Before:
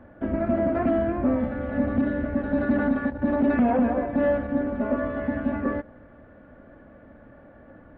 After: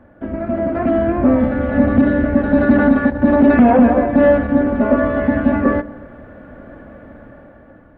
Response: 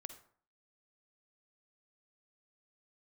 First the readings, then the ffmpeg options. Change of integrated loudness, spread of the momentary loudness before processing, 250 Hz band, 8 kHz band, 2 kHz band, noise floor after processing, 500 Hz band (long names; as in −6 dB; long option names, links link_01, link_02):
+10.5 dB, 6 LU, +10.5 dB, can't be measured, +10.5 dB, −45 dBFS, +10.0 dB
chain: -filter_complex "[0:a]dynaudnorm=framelen=400:gausssize=5:maxgain=10.5dB,asplit=2[link_01][link_02];[1:a]atrim=start_sample=2205,asetrate=24255,aresample=44100[link_03];[link_02][link_03]afir=irnorm=-1:irlink=0,volume=-7dB[link_04];[link_01][link_04]amix=inputs=2:normalize=0,volume=-1dB"